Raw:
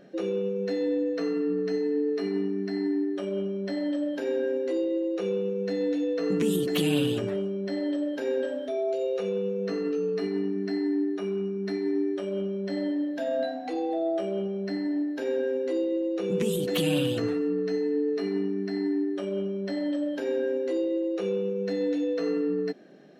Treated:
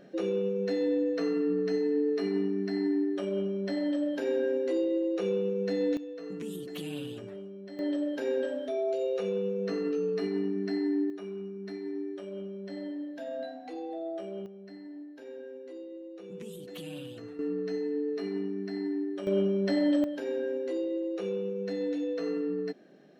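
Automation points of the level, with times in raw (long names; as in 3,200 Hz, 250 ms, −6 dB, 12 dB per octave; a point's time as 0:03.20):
−1 dB
from 0:05.97 −13 dB
from 0:07.79 −2 dB
from 0:11.10 −9 dB
from 0:14.46 −16 dB
from 0:17.39 −5 dB
from 0:19.27 +3.5 dB
from 0:20.04 −4.5 dB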